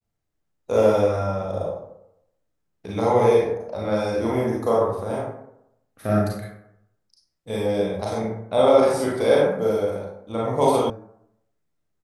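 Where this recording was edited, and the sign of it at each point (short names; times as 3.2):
10.9 sound cut off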